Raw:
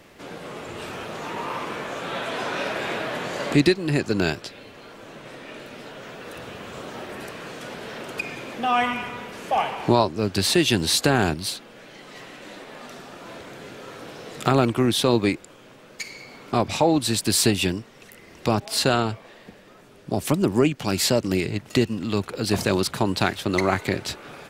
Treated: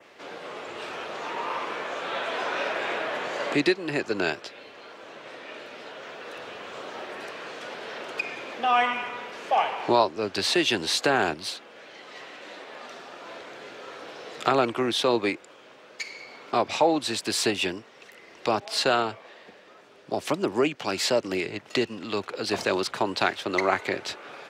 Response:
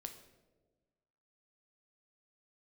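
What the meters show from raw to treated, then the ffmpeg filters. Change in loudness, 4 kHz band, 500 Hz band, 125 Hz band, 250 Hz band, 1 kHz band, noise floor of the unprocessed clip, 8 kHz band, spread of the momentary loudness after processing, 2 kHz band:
-3.5 dB, -2.5 dB, -2.0 dB, -14.5 dB, -7.0 dB, 0.0 dB, -49 dBFS, -7.0 dB, 18 LU, -0.5 dB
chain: -filter_complex "[0:a]adynamicequalizer=threshold=0.00794:dfrequency=4300:dqfactor=1.8:tfrequency=4300:tqfactor=1.8:attack=5:release=100:ratio=0.375:range=2:mode=cutabove:tftype=bell,highpass=82,acrossover=split=340 6500:gain=0.178 1 0.178[a][b][c];[a][b][c]amix=inputs=3:normalize=0"

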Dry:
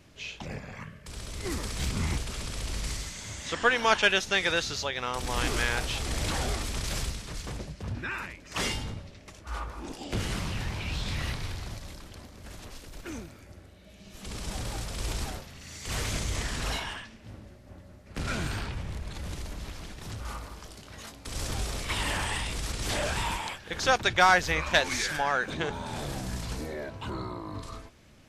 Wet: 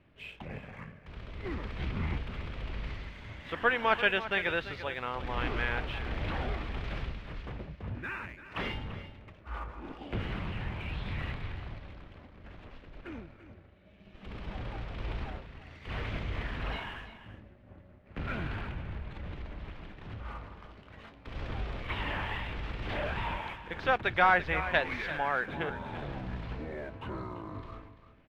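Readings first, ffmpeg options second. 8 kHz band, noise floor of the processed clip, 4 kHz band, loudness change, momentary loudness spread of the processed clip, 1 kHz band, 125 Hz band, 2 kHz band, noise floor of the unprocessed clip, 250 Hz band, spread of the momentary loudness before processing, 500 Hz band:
under -30 dB, -56 dBFS, -10.0 dB, -4.0 dB, 19 LU, -3.0 dB, -3.5 dB, -3.5 dB, -51 dBFS, -3.5 dB, 19 LU, -3.0 dB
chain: -filter_complex "[0:a]lowpass=f=2.9k:w=0.5412,lowpass=f=2.9k:w=1.3066,asplit=2[a][b];[b]aeval=exprs='sgn(val(0))*max(abs(val(0))-0.00335,0)':c=same,volume=-5dB[c];[a][c]amix=inputs=2:normalize=0,aecho=1:1:340:0.224,volume=-7dB"

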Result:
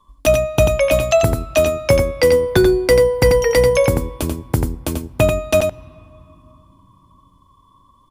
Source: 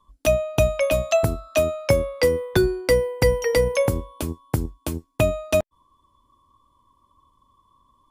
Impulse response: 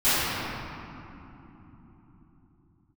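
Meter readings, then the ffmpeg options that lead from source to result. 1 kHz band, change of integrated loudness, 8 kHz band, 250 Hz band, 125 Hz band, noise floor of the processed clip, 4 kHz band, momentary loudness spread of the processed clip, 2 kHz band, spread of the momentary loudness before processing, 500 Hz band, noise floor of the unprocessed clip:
+6.5 dB, +6.0 dB, +6.0 dB, +6.5 dB, +5.5 dB, -54 dBFS, +6.0 dB, 9 LU, +6.0 dB, 10 LU, +6.5 dB, -65 dBFS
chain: -filter_complex "[0:a]aecho=1:1:89:0.501,acontrast=42,asplit=2[a][b];[1:a]atrim=start_sample=2205[c];[b][c]afir=irnorm=-1:irlink=0,volume=-41.5dB[d];[a][d]amix=inputs=2:normalize=0"

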